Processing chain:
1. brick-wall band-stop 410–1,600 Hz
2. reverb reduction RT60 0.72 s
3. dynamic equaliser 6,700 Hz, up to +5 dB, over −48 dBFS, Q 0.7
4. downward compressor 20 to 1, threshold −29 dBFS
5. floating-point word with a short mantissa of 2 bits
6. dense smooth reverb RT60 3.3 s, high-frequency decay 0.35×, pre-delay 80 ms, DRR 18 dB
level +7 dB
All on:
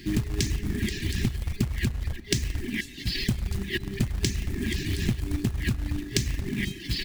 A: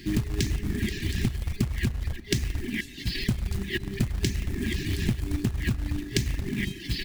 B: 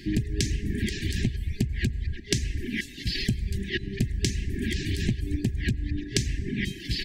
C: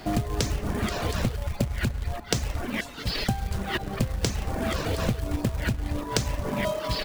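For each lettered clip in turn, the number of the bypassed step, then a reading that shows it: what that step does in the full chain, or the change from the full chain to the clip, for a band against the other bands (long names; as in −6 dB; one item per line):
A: 3, 8 kHz band −3.0 dB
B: 5, distortion level −20 dB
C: 1, 1 kHz band +17.0 dB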